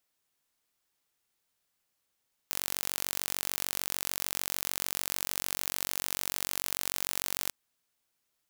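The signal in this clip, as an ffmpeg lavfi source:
-f lavfi -i "aevalsrc='0.562*eq(mod(n,944),0)':d=4.99:s=44100"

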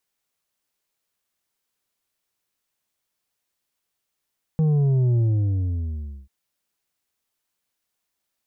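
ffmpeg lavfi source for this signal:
-f lavfi -i "aevalsrc='0.141*clip((1.69-t)/1.1,0,1)*tanh(2*sin(2*PI*160*1.69/log(65/160)*(exp(log(65/160)*t/1.69)-1)))/tanh(2)':d=1.69:s=44100"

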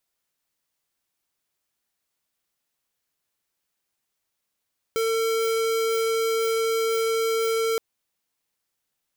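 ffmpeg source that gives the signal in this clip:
-f lavfi -i "aevalsrc='0.0668*(2*lt(mod(451*t,1),0.5)-1)':d=2.82:s=44100"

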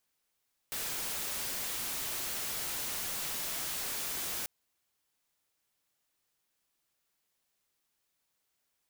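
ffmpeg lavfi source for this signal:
-f lavfi -i "anoisesrc=c=white:a=0.0259:d=3.74:r=44100:seed=1"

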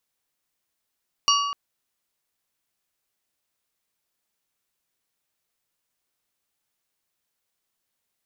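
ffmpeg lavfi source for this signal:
-f lavfi -i "aevalsrc='0.119*pow(10,-3*t/1.55)*sin(2*PI*1140*t)+0.112*pow(10,-3*t/0.816)*sin(2*PI*2850*t)+0.106*pow(10,-3*t/0.587)*sin(2*PI*4560*t)+0.1*pow(10,-3*t/0.502)*sin(2*PI*5700*t)':d=0.25:s=44100"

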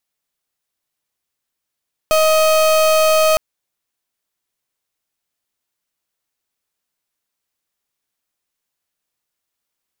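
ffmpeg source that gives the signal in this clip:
-f lavfi -i "aevalsrc='0.224*(2*lt(mod(629*t,1),0.35)-1)':d=1.26:s=44100"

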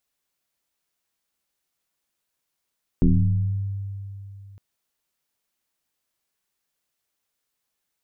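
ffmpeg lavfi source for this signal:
-f lavfi -i "aevalsrc='0.251*pow(10,-3*t/3.03)*sin(2*PI*98.9*t+2.6*pow(10,-3*t/1.28)*sin(2*PI*0.82*98.9*t))':d=1.56:s=44100"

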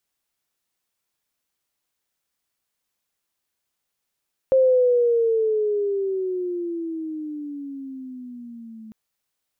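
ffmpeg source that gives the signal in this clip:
-f lavfi -i "aevalsrc='pow(10,(-12.5-25*t/4.4)/20)*sin(2*PI*531*4.4/(-15.5*log(2)/12)*(exp(-15.5*log(2)/12*t/4.4)-1))':d=4.4:s=44100"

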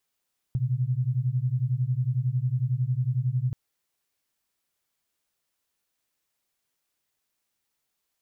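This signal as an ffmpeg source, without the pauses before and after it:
-f lavfi -i "aevalsrc='0.0501*(sin(2*PI*121*t)+sin(2*PI*132*t))':d=2.98:s=44100"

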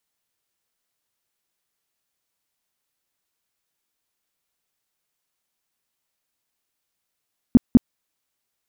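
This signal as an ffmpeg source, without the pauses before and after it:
-f lavfi -i "aevalsrc='0.531*sin(2*PI*243*mod(t,0.2))*lt(mod(t,0.2),5/243)':d=0.4:s=44100"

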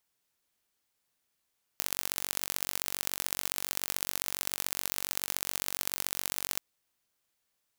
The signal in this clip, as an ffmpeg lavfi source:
-f lavfi -i "aevalsrc='0.75*eq(mod(n,936),0)*(0.5+0.5*eq(mod(n,2808),0))':d=4.79:s=44100"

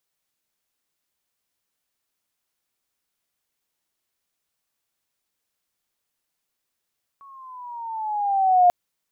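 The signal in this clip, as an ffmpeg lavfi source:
-f lavfi -i "aevalsrc='pow(10,(-10.5+33*(t/1.49-1))/20)*sin(2*PI*1120*1.49/(-8*log(2)/12)*(exp(-8*log(2)/12*t/1.49)-1))':d=1.49:s=44100"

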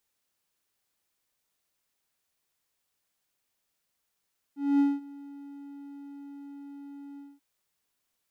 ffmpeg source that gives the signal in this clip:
-f lavfi -i "aevalsrc='0.15*(1-4*abs(mod(282*t+0.25,1)-0.5))':d=2.837:s=44100,afade=t=in:d=0.234,afade=t=out:st=0.234:d=0.206:silence=0.0708,afade=t=out:st=2.62:d=0.217"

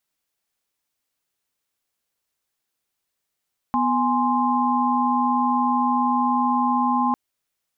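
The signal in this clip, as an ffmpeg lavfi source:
-f lavfi -i "aevalsrc='0.0794*(sin(2*PI*246.94*t)+sin(2*PI*830.61*t)+sin(2*PI*1046.5*t))':d=3.4:s=44100"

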